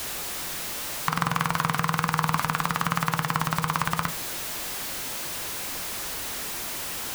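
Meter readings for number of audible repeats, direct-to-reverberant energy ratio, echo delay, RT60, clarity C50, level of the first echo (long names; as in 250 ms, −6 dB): no echo audible, 10.5 dB, no echo audible, 0.40 s, 17.5 dB, no echo audible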